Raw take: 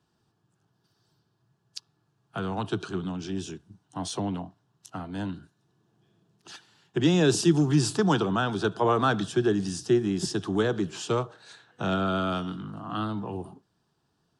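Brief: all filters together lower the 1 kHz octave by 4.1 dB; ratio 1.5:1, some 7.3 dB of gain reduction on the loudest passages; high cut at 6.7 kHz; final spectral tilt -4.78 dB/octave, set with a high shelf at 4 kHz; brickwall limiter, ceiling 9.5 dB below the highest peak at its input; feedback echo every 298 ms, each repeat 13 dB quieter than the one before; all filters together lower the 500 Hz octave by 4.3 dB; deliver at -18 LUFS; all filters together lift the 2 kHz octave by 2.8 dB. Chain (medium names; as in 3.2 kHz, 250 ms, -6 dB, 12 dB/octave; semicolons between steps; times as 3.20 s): low-pass 6.7 kHz; peaking EQ 500 Hz -5 dB; peaking EQ 1 kHz -8 dB; peaking EQ 2 kHz +8 dB; treble shelf 4 kHz +3 dB; compression 1.5:1, threshold -39 dBFS; peak limiter -26.5 dBFS; feedback delay 298 ms, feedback 22%, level -13 dB; trim +19 dB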